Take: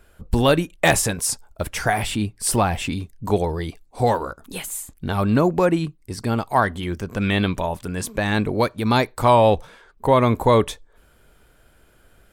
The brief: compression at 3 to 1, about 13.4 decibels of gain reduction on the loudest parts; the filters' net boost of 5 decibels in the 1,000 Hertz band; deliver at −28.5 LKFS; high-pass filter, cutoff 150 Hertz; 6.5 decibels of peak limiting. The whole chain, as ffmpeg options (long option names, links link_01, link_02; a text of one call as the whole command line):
ffmpeg -i in.wav -af "highpass=150,equalizer=frequency=1000:width_type=o:gain=6,acompressor=threshold=-26dB:ratio=3,volume=1.5dB,alimiter=limit=-15dB:level=0:latency=1" out.wav